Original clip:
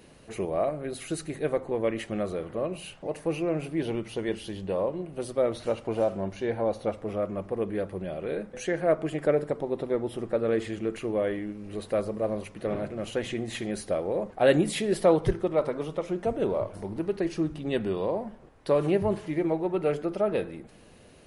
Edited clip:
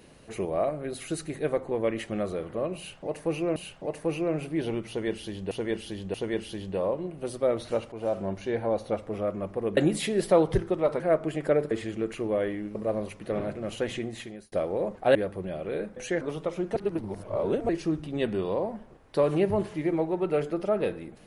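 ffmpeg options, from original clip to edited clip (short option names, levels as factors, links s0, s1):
-filter_complex "[0:a]asplit=14[s0][s1][s2][s3][s4][s5][s6][s7][s8][s9][s10][s11][s12][s13];[s0]atrim=end=3.562[s14];[s1]atrim=start=2.768:end=4.722[s15];[s2]atrim=start=4.088:end=4.722[s16];[s3]atrim=start=4.088:end=5.87,asetpts=PTS-STARTPTS,afade=t=out:st=1.778:d=0.004:c=hsin:silence=0.237137[s17];[s4]atrim=start=5.87:end=7.722,asetpts=PTS-STARTPTS,afade=t=in:d=0.27:silence=0.237137[s18];[s5]atrim=start=14.498:end=15.732[s19];[s6]atrim=start=8.778:end=9.492[s20];[s7]atrim=start=10.548:end=11.592[s21];[s8]atrim=start=12.098:end=13.87,asetpts=PTS-STARTPTS,afade=t=out:st=1.192:d=0.58[s22];[s9]atrim=start=13.87:end=14.502,asetpts=PTS-STARTPTS,afade=t=in:d=0.004:c=hsin[s23];[s10]atrim=start=7.718:end=8.782[s24];[s11]atrim=start=15.728:end=16.282[s25];[s12]atrim=start=16.278:end=17.212,asetpts=PTS-STARTPTS,areverse[s26];[s13]atrim=start=17.208[s27];[s14][s15]acrossfade=d=0.004:c1=hsin:c2=hsin[s28];[s28][s16]acrossfade=d=0.004:c1=hsin:c2=hsin[s29];[s17][s18]concat=n=2:v=0:a=1[s30];[s29][s30]acrossfade=d=0.004:c1=hsin:c2=hsin[s31];[s31][s19]acrossfade=d=0.004:c1=hsin:c2=hsin[s32];[s32][s20]acrossfade=d=0.004:c1=hsin:c2=hsin[s33];[s33][s21]acrossfade=d=0.004:c1=hsin:c2=hsin[s34];[s22][s23]concat=n=2:v=0:a=1[s35];[s34][s35]acrossfade=d=0.004:c1=hsin:c2=hsin[s36];[s36][s24]acrossfade=d=0.004:c1=hsin:c2=hsin[s37];[s37][s25]acrossfade=d=0.004:c1=hsin:c2=hsin[s38];[s38][s26]acrossfade=d=0.004:c1=hsin:c2=hsin[s39];[s39][s27]acrossfade=d=0.004:c1=hsin:c2=hsin"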